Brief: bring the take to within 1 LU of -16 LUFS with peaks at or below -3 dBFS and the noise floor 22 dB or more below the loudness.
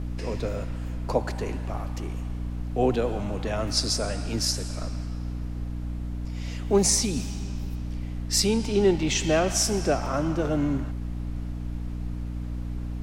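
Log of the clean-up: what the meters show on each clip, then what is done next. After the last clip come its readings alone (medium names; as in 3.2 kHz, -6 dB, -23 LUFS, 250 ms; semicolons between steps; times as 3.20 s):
hum 60 Hz; highest harmonic 300 Hz; hum level -29 dBFS; noise floor -33 dBFS; noise floor target -50 dBFS; loudness -27.5 LUFS; peak level -8.5 dBFS; loudness target -16.0 LUFS
-> de-hum 60 Hz, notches 5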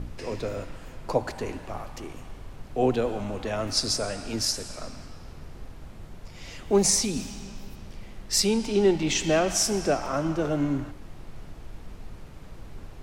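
hum not found; noise floor -44 dBFS; noise floor target -48 dBFS
-> noise print and reduce 6 dB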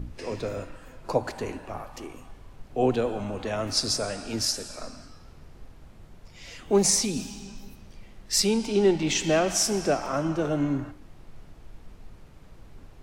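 noise floor -50 dBFS; loudness -26.0 LUFS; peak level -10.0 dBFS; loudness target -16.0 LUFS
-> trim +10 dB; peak limiter -3 dBFS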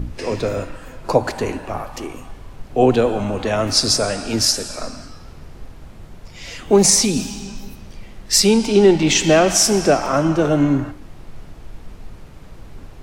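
loudness -16.5 LUFS; peak level -3.0 dBFS; noise floor -40 dBFS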